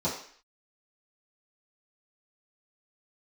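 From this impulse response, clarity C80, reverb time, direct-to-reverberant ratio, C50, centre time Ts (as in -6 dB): 9.5 dB, 0.50 s, -11.0 dB, 5.5 dB, 33 ms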